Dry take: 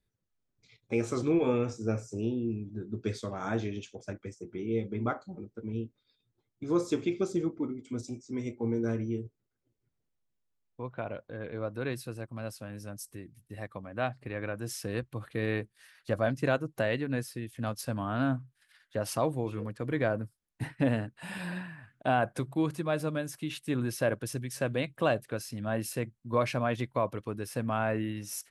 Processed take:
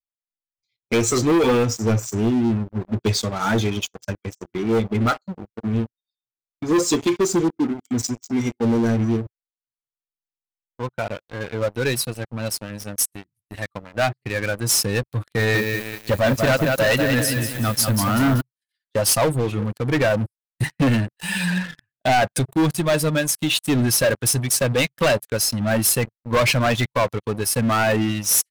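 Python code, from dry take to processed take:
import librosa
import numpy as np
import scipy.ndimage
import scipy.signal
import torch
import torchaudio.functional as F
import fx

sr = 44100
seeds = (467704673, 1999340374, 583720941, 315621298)

y = fx.echo_crushed(x, sr, ms=190, feedback_pct=55, bits=9, wet_db=-5.0, at=(15.19, 18.41))
y = fx.bin_expand(y, sr, power=1.5)
y = fx.high_shelf(y, sr, hz=2500.0, db=11.5)
y = fx.leveller(y, sr, passes=5)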